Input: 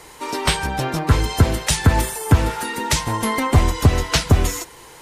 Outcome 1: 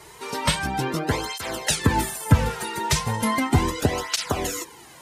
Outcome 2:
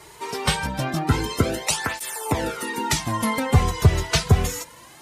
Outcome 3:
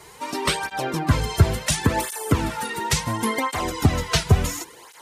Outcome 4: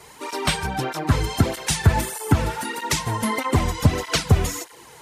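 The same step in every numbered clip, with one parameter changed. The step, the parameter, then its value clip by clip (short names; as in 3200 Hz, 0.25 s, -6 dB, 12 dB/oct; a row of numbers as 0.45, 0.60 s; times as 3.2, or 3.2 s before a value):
tape flanging out of phase, nulls at: 0.36, 0.25, 0.71, 1.6 Hz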